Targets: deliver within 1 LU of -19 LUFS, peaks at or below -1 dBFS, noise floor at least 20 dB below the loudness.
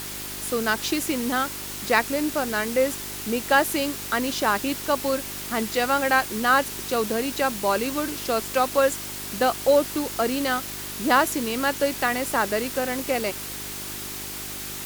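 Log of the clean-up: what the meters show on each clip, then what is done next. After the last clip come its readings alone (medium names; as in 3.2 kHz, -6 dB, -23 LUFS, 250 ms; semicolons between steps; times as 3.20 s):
hum 50 Hz; highest harmonic 400 Hz; hum level -40 dBFS; noise floor -34 dBFS; noise floor target -44 dBFS; loudness -24.0 LUFS; peak level -5.0 dBFS; loudness target -19.0 LUFS
-> de-hum 50 Hz, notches 8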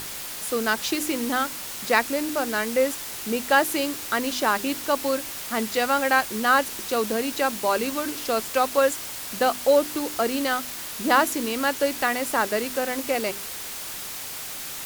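hum not found; noise floor -35 dBFS; noise floor target -45 dBFS
-> noise reduction 10 dB, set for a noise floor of -35 dBFS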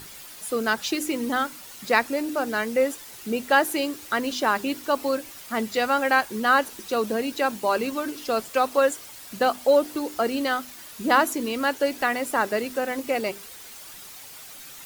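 noise floor -43 dBFS; noise floor target -45 dBFS
-> noise reduction 6 dB, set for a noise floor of -43 dBFS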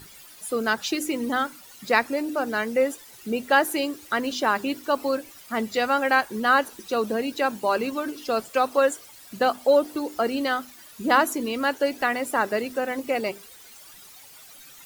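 noise floor -48 dBFS; loudness -24.5 LUFS; peak level -5.5 dBFS; loudness target -19.0 LUFS
-> trim +5.5 dB; peak limiter -1 dBFS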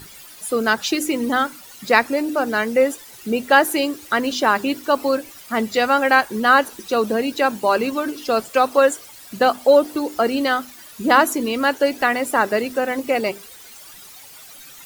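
loudness -19.0 LUFS; peak level -1.0 dBFS; noise floor -42 dBFS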